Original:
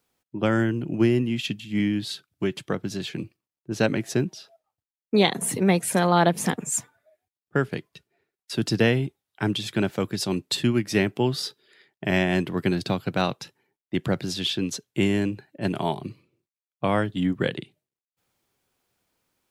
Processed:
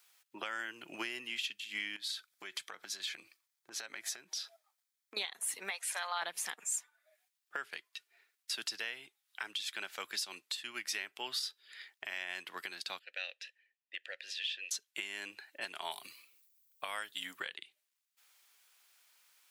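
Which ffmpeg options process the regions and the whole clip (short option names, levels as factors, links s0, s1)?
-filter_complex "[0:a]asettb=1/sr,asplit=3[s0][s1][s2];[s0]atrim=end=1.964[s3];[s1]atrim=start=1.96:end=5.17,asetpts=PTS-STARTPTS,afade=t=in:d=0.004:c=qsin,afade=t=out:st=3.206:d=0.004:c=qsin,bandreject=f=2800:w=8,acompressor=threshold=0.0178:ratio=16:attack=3.2:release=140:knee=1:detection=peak[s4];[s2]atrim=start=5.166[s5];[s3][s4]acrossfade=d=0.004:c1=hsin:c2=qsin[s6];[s6][s5]acrossfade=d=0.004:c1=qsin:c2=hsin,asettb=1/sr,asplit=3[s7][s8][s9];[s7]atrim=end=5.704[s10];[s8]atrim=start=5.7:end=6.22,asetpts=PTS-STARTPTS,afade=t=in:d=0.004:c=qsin,afade=t=out:st=0.516:d=0.004:c=qsin,highpass=f=580:w=0.5412,highpass=f=580:w=1.3066,highshelf=f=10000:g=-11[s11];[s9]atrim=start=6.216[s12];[s10][s11]acrossfade=d=0.004:c1=hsin:c2=qsin[s13];[s13][s12]acrossfade=d=0.004:c1=qsin:c2=hsin,asettb=1/sr,asplit=3[s14][s15][s16];[s14]atrim=end=12.994[s17];[s15]atrim=start=12.99:end=14.71,asetpts=PTS-STARTPTS,afade=t=in:d=0.004:c=qsin,afade=t=out:st=1.716:d=0.004:c=qsin,asplit=3[s18][s19][s20];[s18]bandpass=f=530:t=q:w=8,volume=1[s21];[s19]bandpass=f=1840:t=q:w=8,volume=0.501[s22];[s20]bandpass=f=2480:t=q:w=8,volume=0.355[s23];[s21][s22][s23]amix=inputs=3:normalize=0,tiltshelf=f=1300:g=-7.5[s24];[s16]atrim=start=14.706[s25];[s17][s24]acrossfade=d=0.004:c1=hsin:c2=qsin[s26];[s26][s25]acrossfade=d=0.004:c1=qsin:c2=hsin,asettb=1/sr,asplit=3[s27][s28][s29];[s27]atrim=end=15.914[s30];[s28]atrim=start=15.91:end=17.4,asetpts=PTS-STARTPTS,afade=t=in:d=0.004:c=qsin,afade=t=out:st=1.486:d=0.004:c=qsin,aemphasis=mode=production:type=50fm,bandreject=f=360:w=7.8[s31];[s29]atrim=start=17.396[s32];[s30][s31]acrossfade=d=0.004:c1=hsin:c2=qsin[s33];[s33][s32]acrossfade=d=0.004:c1=qsin:c2=hsin,highpass=1500,acompressor=threshold=0.00282:ratio=2,alimiter=level_in=3.35:limit=0.0631:level=0:latency=1:release=450,volume=0.299,volume=2.99"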